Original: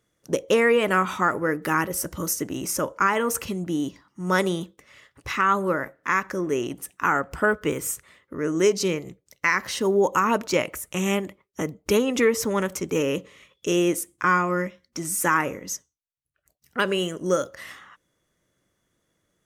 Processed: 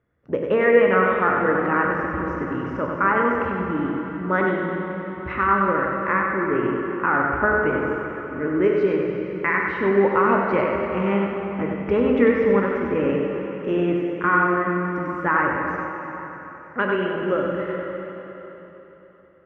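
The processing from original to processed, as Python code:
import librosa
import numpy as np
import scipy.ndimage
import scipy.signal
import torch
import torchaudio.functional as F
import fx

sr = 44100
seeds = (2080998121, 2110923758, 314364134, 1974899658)

y = scipy.signal.sosfilt(scipy.signal.butter(4, 2100.0, 'lowpass', fs=sr, output='sos'), x)
y = fx.peak_eq(y, sr, hz=77.0, db=14.0, octaves=0.26)
y = y + 10.0 ** (-5.0 / 20.0) * np.pad(y, (int(96 * sr / 1000.0), 0))[:len(y)]
y = fx.rev_plate(y, sr, seeds[0], rt60_s=3.8, hf_ratio=0.9, predelay_ms=0, drr_db=1.0)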